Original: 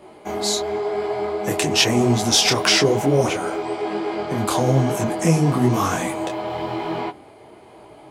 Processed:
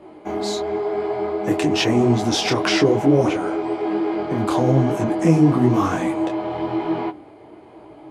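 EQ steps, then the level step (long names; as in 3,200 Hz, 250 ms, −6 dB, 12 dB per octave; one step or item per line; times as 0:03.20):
low-pass filter 2,200 Hz 6 dB per octave
parametric band 310 Hz +10 dB 0.22 octaves
0.0 dB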